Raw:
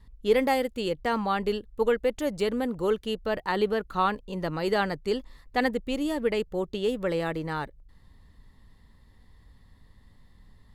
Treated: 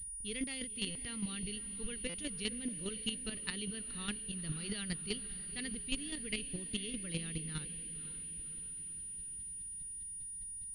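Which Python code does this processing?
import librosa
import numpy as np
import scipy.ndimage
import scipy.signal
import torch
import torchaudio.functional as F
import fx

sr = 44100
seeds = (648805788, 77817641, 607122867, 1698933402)

y = fx.curve_eq(x, sr, hz=(170.0, 830.0, 2900.0), db=(0, -28, 4))
y = fx.chopper(y, sr, hz=4.9, depth_pct=65, duty_pct=15)
y = fx.echo_diffused(y, sr, ms=523, feedback_pct=55, wet_db=-13.0)
y = fx.buffer_glitch(y, sr, at_s=(0.9, 2.09), block=256, repeats=8)
y = fx.pwm(y, sr, carrier_hz=9600.0)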